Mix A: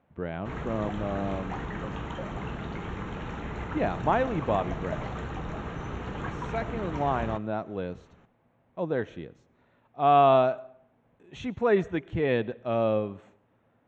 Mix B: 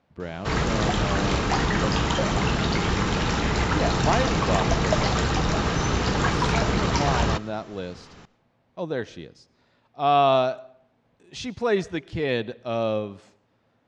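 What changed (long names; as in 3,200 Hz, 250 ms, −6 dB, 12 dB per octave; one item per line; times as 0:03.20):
background +11.5 dB
master: remove moving average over 9 samples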